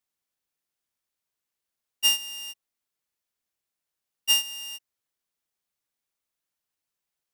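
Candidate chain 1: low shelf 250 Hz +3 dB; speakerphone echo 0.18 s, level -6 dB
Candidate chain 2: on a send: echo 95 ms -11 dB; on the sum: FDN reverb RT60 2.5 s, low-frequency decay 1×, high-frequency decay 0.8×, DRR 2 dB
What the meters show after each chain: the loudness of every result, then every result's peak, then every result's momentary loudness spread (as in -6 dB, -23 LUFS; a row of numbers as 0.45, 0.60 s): -24.5, -23.5 LUFS; -12.0, -10.5 dBFS; 15, 18 LU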